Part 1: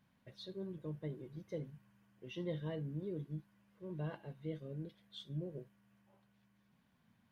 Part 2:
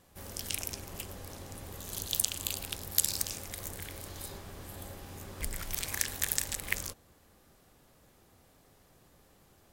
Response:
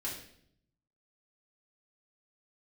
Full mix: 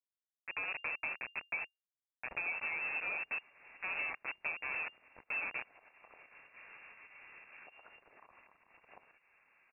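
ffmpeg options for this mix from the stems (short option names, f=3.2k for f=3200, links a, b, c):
-filter_complex "[0:a]equalizer=f=640:t=o:w=1.3:g=4,dynaudnorm=f=110:g=9:m=7dB,acrusher=bits=5:mix=0:aa=0.000001,volume=-1dB,asplit=2[a][b];[1:a]acompressor=threshold=-39dB:ratio=2.5,alimiter=level_in=13.5dB:limit=-24dB:level=0:latency=1:release=116,volume=-13.5dB,lowshelf=f=240:g=-12,adelay=2250,volume=-2dB[c];[b]apad=whole_len=527992[d];[c][d]sidechaincompress=threshold=-39dB:ratio=10:attack=7.3:release=513[e];[a][e]amix=inputs=2:normalize=0,adynamicequalizer=threshold=0.001:dfrequency=2100:dqfactor=1.9:tfrequency=2100:tqfactor=1.9:attack=5:release=100:ratio=0.375:range=3:mode=boostabove:tftype=bell,lowpass=f=2.4k:t=q:w=0.5098,lowpass=f=2.4k:t=q:w=0.6013,lowpass=f=2.4k:t=q:w=0.9,lowpass=f=2.4k:t=q:w=2.563,afreqshift=-2800,acompressor=threshold=-35dB:ratio=6"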